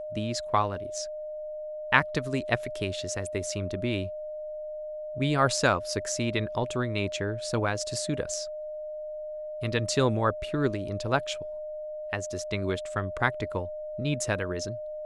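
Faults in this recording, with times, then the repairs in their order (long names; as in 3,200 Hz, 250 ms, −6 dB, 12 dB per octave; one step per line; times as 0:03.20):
whistle 610 Hz −34 dBFS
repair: notch filter 610 Hz, Q 30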